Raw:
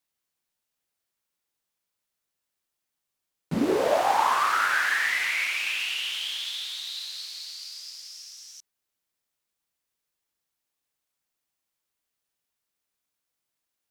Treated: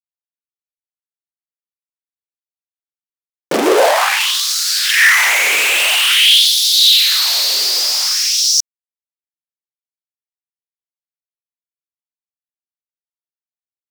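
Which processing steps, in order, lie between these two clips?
fuzz pedal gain 47 dB, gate −53 dBFS
auto-filter high-pass sine 0.49 Hz 420–5,100 Hz

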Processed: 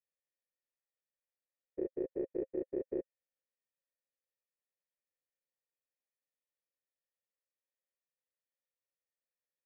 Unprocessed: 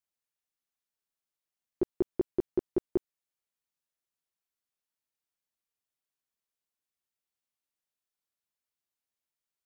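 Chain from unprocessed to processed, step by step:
every bin's largest magnitude spread in time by 60 ms
formant resonators in series e
level +2.5 dB

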